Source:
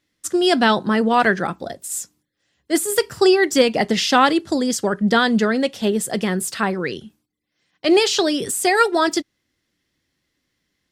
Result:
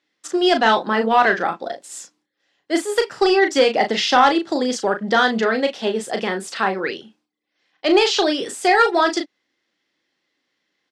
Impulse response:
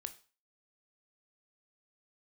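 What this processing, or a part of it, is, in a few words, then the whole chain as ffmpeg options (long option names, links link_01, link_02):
intercom: -filter_complex "[0:a]highpass=340,lowpass=4800,equalizer=frequency=810:width_type=o:width=0.22:gain=4,asoftclip=type=tanh:threshold=-6dB,asplit=2[link_01][link_02];[link_02]adelay=36,volume=-6.5dB[link_03];[link_01][link_03]amix=inputs=2:normalize=0,volume=1.5dB"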